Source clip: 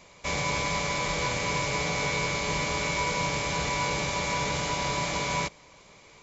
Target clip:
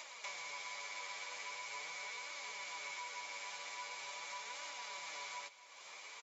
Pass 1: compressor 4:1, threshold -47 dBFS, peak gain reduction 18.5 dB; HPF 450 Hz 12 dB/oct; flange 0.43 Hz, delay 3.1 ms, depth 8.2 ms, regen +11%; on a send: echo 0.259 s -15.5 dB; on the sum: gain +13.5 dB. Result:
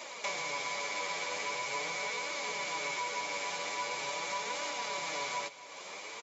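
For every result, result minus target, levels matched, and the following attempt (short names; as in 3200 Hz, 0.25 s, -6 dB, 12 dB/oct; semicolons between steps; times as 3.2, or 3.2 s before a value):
compressor: peak gain reduction -8.5 dB; 500 Hz band +7.0 dB
compressor 4:1, threshold -58.5 dBFS, peak gain reduction 27 dB; HPF 450 Hz 12 dB/oct; flange 0.43 Hz, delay 3.1 ms, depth 8.2 ms, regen +11%; on a send: echo 0.259 s -15.5 dB; on the sum: gain +13.5 dB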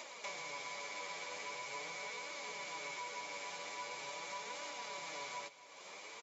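500 Hz band +7.0 dB
compressor 4:1, threshold -58.5 dBFS, peak gain reduction 27 dB; HPF 920 Hz 12 dB/oct; flange 0.43 Hz, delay 3.1 ms, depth 8.2 ms, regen +11%; on a send: echo 0.259 s -15.5 dB; on the sum: gain +13.5 dB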